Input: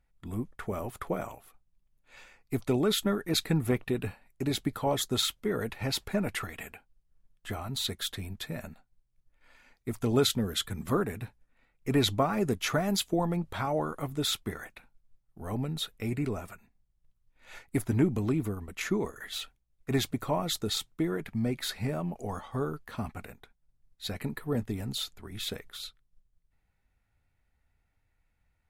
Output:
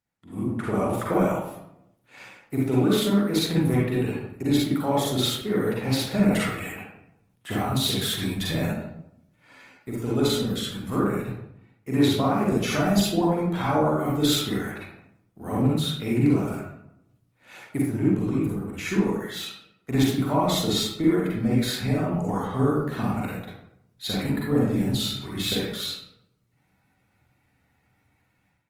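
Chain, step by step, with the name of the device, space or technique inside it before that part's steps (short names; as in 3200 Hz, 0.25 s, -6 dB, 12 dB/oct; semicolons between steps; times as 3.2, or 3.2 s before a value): far-field microphone of a smart speaker (reverb RT60 0.75 s, pre-delay 38 ms, DRR -5.5 dB; HPF 93 Hz 24 dB/oct; AGC gain up to 14.5 dB; gain -8.5 dB; Opus 24 kbps 48000 Hz)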